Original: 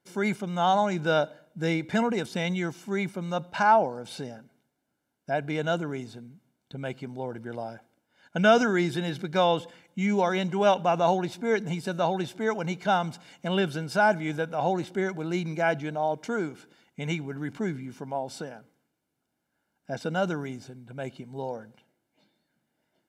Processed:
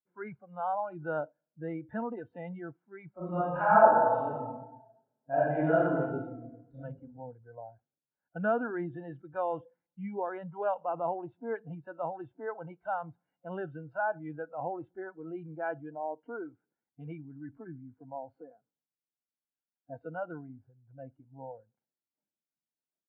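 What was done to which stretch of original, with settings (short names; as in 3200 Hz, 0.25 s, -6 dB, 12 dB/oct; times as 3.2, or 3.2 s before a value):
3.16–6.76 reverb throw, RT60 1.6 s, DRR -10 dB
whole clip: spectral noise reduction 20 dB; inverse Chebyshev low-pass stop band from 5400 Hz, stop band 60 dB; gain -9 dB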